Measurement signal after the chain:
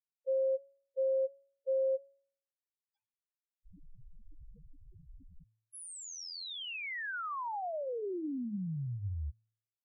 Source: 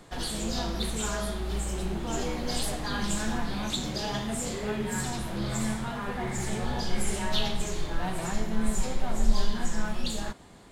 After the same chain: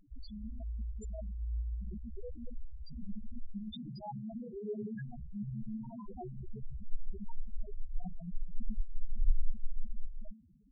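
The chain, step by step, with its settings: de-hum 110.5 Hz, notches 31; loudest bins only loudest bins 2; trim -3 dB

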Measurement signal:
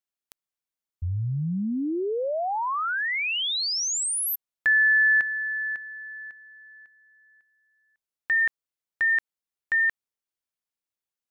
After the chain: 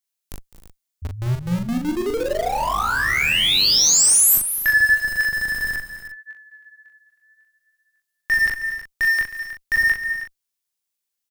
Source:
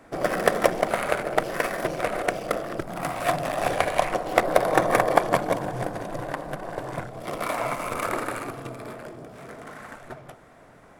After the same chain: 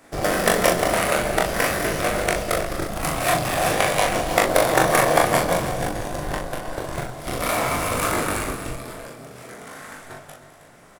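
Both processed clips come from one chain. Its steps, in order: treble shelf 3 kHz +12 dB; chorus 0.49 Hz, delay 19.5 ms, depth 6.1 ms; in parallel at -4 dB: Schmitt trigger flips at -27 dBFS; on the sum: doubling 40 ms -4 dB; multi-tap echo 208/242/317 ms -15/-15.5/-12.5 dB; trim +1.5 dB

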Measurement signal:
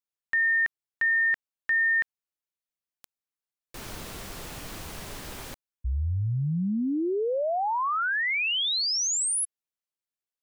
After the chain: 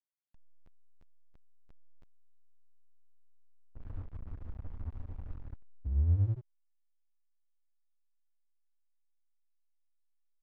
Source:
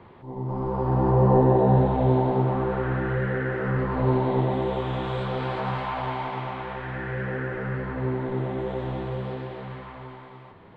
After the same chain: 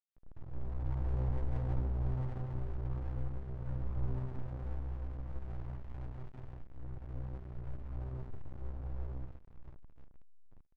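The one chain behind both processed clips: spectral levelling over time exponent 0.6; low-pass 1.3 kHz 24 dB/octave; chorus voices 6, 0.27 Hz, delay 10 ms, depth 2.1 ms; FFT filter 100 Hz 0 dB, 160 Hz -20 dB, 340 Hz -22 dB, 740 Hz -19 dB; early reflections 26 ms -15.5 dB, 72 ms -7 dB; hysteresis with a dead band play -31.5 dBFS; loudspeaker Doppler distortion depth 0.24 ms; trim -1.5 dB

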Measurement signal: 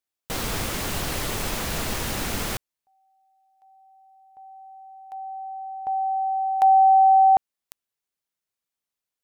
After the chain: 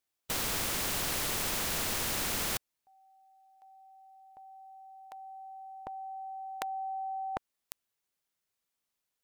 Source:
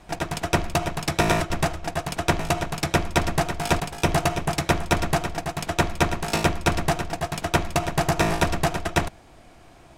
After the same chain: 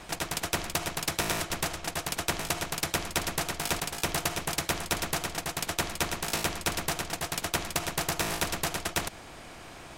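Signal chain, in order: spectrum-flattening compressor 2:1

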